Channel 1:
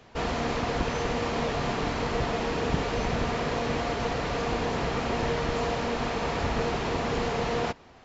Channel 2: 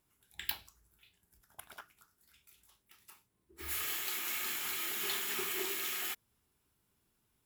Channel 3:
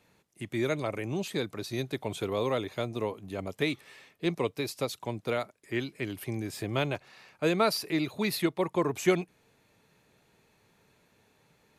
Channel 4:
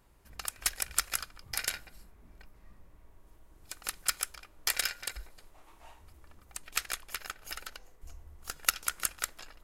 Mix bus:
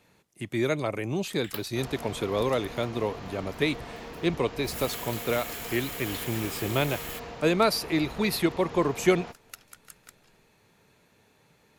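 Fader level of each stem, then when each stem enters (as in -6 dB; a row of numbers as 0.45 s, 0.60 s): -12.5 dB, -1.5 dB, +3.0 dB, -17.5 dB; 1.60 s, 1.05 s, 0.00 s, 0.85 s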